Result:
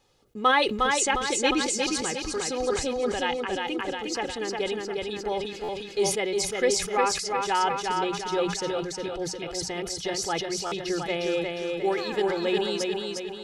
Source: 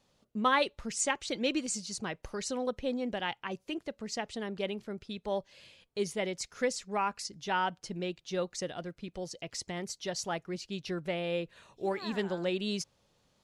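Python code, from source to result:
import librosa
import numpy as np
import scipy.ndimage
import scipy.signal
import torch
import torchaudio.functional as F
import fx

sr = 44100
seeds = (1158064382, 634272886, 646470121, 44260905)

y = fx.hum_notches(x, sr, base_hz=60, count=3)
y = y + 0.58 * np.pad(y, (int(2.4 * sr / 1000.0), 0))[:len(y)]
y = fx.echo_feedback(y, sr, ms=357, feedback_pct=48, wet_db=-3.5)
y = fx.buffer_glitch(y, sr, at_s=(5.63, 10.66), block=512, repeats=4)
y = fx.sustainer(y, sr, db_per_s=61.0)
y = F.gain(torch.from_numpy(y), 4.0).numpy()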